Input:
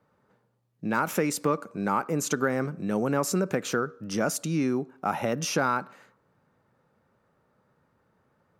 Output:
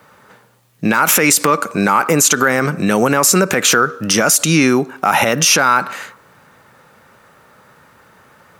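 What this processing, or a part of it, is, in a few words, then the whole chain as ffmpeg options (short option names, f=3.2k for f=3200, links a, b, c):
mastering chain: -af "equalizer=f=4.7k:t=o:w=0.69:g=-2.5,acompressor=threshold=-28dB:ratio=2,tiltshelf=f=970:g=-7.5,alimiter=level_in=23.5dB:limit=-1dB:release=50:level=0:latency=1,volume=-1dB"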